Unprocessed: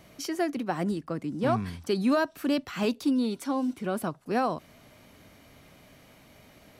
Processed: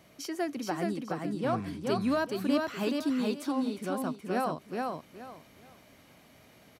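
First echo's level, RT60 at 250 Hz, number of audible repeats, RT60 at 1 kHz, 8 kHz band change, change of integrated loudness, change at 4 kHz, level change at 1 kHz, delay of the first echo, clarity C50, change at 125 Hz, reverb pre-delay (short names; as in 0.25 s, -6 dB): -3.0 dB, none, 3, none, -2.0 dB, -3.0 dB, -2.0 dB, -2.0 dB, 0.423 s, none, -3.5 dB, none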